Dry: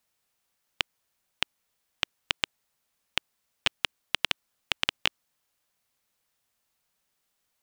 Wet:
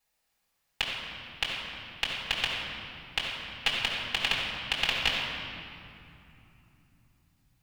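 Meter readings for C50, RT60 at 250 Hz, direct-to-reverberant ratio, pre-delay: -0.5 dB, 4.8 s, -6.0 dB, 4 ms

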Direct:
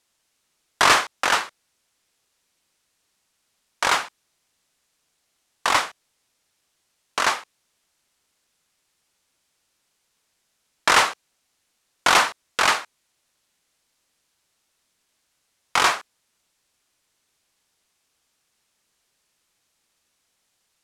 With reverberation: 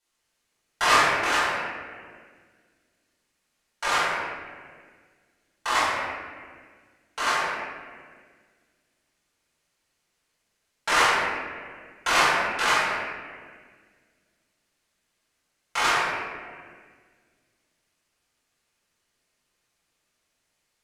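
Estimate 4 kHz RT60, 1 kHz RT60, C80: 1.2 s, 1.6 s, 0.0 dB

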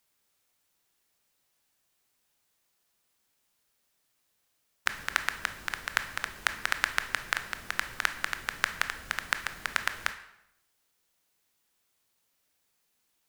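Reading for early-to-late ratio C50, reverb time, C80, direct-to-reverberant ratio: 12.0 dB, 0.80 s, 14.5 dB, 9.0 dB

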